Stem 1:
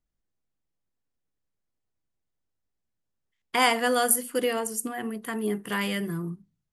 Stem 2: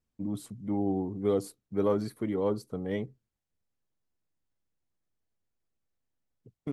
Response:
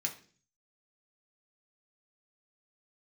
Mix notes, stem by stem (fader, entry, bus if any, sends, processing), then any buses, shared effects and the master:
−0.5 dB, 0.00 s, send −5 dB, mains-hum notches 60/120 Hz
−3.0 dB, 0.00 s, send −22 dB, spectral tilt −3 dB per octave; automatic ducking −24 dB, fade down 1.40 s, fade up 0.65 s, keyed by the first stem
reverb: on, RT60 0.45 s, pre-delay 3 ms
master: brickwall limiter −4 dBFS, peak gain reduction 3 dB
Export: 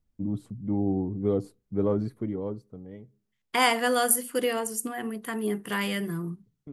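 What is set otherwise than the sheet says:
stem 1: send off
reverb return −8.0 dB

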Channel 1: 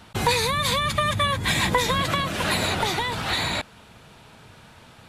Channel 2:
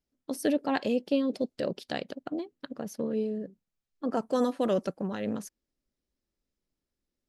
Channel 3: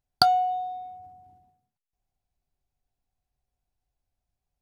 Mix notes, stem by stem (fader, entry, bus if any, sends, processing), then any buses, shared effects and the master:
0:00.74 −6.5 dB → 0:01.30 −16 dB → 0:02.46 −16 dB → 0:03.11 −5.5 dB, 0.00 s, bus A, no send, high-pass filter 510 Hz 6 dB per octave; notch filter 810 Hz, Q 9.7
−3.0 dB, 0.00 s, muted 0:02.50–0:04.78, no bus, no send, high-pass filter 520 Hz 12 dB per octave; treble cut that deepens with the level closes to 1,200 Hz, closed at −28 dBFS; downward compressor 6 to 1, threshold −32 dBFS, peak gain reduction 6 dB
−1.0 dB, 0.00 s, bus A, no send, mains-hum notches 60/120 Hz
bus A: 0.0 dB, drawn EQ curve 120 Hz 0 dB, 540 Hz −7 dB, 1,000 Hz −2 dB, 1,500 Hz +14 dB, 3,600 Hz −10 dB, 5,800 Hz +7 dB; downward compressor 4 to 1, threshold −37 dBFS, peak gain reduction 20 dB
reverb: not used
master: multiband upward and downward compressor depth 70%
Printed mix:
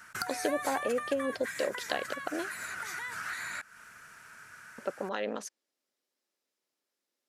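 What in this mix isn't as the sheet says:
stem 2 −3.0 dB → +5.5 dB
master: missing multiband upward and downward compressor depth 70%

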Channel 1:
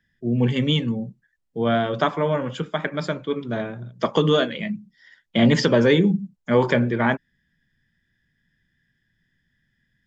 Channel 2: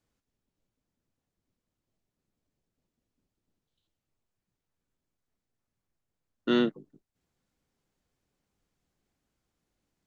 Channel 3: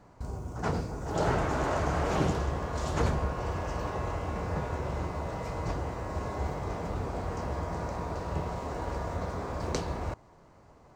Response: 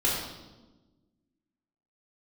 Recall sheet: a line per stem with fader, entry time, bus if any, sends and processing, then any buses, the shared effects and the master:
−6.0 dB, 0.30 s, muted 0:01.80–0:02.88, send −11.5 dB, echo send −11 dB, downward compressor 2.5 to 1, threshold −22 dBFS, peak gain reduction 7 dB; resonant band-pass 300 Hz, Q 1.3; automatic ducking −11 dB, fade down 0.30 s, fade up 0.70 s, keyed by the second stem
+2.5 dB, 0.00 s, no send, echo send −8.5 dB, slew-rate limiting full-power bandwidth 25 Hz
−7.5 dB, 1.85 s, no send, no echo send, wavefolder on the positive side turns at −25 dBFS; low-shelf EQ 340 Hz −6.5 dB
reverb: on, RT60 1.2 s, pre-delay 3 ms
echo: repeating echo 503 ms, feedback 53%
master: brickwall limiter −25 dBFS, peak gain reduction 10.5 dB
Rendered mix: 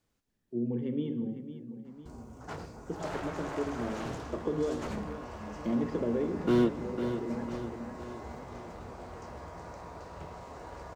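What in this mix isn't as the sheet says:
stem 1: send −11.5 dB → −19.5 dB
master: missing brickwall limiter −25 dBFS, peak gain reduction 10.5 dB

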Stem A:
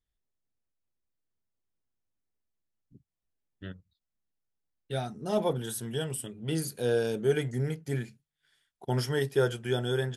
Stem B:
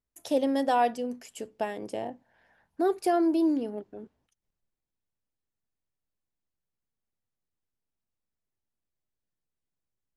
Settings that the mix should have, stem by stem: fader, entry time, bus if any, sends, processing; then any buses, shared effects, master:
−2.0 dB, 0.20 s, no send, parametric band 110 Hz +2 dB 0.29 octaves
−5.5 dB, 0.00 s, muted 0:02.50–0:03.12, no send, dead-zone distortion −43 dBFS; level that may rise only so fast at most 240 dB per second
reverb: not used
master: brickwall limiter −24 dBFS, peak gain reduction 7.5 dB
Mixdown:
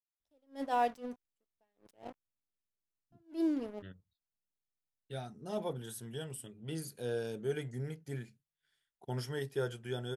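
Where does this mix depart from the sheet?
stem A −2.0 dB → −9.5 dB
master: missing brickwall limiter −24 dBFS, peak gain reduction 7.5 dB

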